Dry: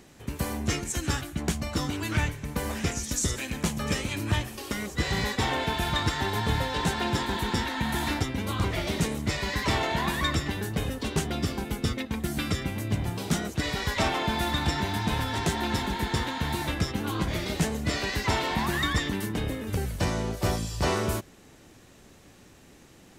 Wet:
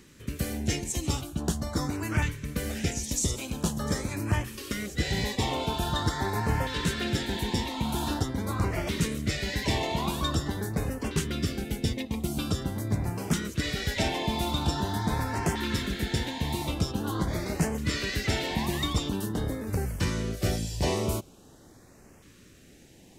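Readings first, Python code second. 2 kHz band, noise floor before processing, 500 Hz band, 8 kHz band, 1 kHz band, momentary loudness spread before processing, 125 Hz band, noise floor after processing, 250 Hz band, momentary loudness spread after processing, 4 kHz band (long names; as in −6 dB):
−4.0 dB, −53 dBFS, −1.0 dB, −0.5 dB, −3.0 dB, 4 LU, 0.0 dB, −54 dBFS, 0.0 dB, 3 LU, −1.5 dB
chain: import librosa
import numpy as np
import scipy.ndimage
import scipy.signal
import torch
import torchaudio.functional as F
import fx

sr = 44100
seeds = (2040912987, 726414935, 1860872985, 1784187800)

y = fx.filter_lfo_notch(x, sr, shape='saw_up', hz=0.45, low_hz=670.0, high_hz=4000.0, q=0.99)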